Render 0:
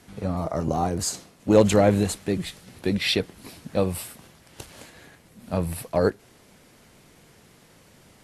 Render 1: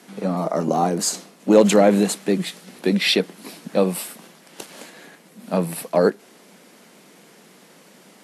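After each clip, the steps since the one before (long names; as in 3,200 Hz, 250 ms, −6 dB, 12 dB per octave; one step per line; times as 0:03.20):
Chebyshev high-pass filter 180 Hz, order 4
in parallel at −2 dB: brickwall limiter −14.5 dBFS, peak gain reduction 9.5 dB
on the sum: level +1 dB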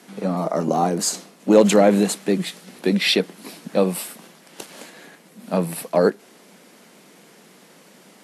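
no processing that can be heard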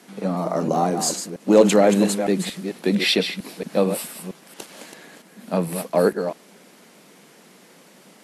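delay that plays each chunk backwards 227 ms, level −8 dB
level −1 dB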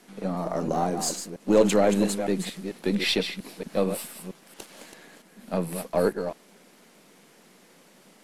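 gain on one half-wave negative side −3 dB
level −4 dB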